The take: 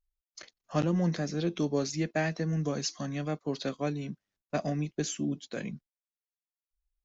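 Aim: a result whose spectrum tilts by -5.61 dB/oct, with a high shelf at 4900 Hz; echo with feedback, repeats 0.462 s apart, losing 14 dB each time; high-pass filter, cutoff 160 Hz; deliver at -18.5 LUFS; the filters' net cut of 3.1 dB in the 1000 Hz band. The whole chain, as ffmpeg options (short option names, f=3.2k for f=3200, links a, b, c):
-af "highpass=160,equalizer=f=1k:t=o:g=-4.5,highshelf=f=4.9k:g=-4.5,aecho=1:1:462|924:0.2|0.0399,volume=15.5dB"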